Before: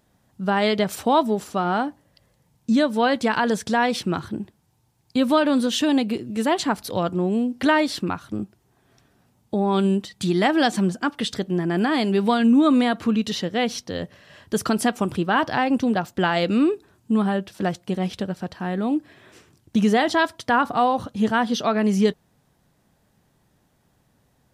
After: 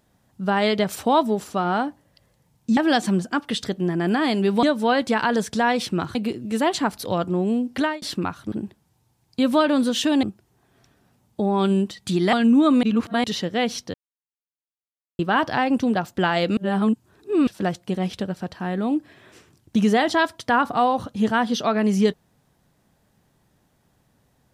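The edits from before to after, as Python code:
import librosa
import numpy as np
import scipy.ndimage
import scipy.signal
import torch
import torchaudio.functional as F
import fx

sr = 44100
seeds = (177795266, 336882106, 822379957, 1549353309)

y = fx.edit(x, sr, fx.move(start_s=4.29, length_s=1.71, to_s=8.37),
    fx.fade_out_span(start_s=7.59, length_s=0.28),
    fx.move(start_s=10.47, length_s=1.86, to_s=2.77),
    fx.reverse_span(start_s=12.83, length_s=0.41),
    fx.silence(start_s=13.94, length_s=1.25),
    fx.reverse_span(start_s=16.57, length_s=0.9), tone=tone)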